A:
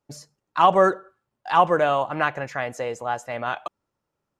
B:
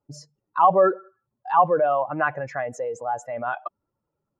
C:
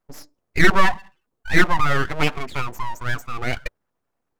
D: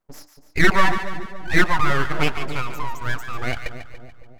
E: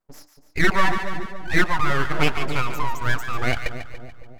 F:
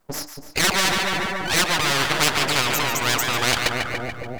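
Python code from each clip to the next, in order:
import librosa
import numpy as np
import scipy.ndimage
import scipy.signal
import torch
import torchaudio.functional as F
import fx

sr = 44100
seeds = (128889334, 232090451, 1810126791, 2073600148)

y1 = fx.spec_expand(x, sr, power=1.8)
y2 = fx.hum_notches(y1, sr, base_hz=50, count=6)
y2 = np.abs(y2)
y2 = y2 * 10.0 ** (5.0 / 20.0)
y3 = fx.echo_split(y2, sr, split_hz=790.0, low_ms=278, high_ms=144, feedback_pct=52, wet_db=-10.0)
y3 = y3 * 10.0 ** (-1.0 / 20.0)
y4 = fx.rider(y3, sr, range_db=3, speed_s=0.5)
y5 = fx.spectral_comp(y4, sr, ratio=4.0)
y5 = y5 * 10.0 ** (1.0 / 20.0)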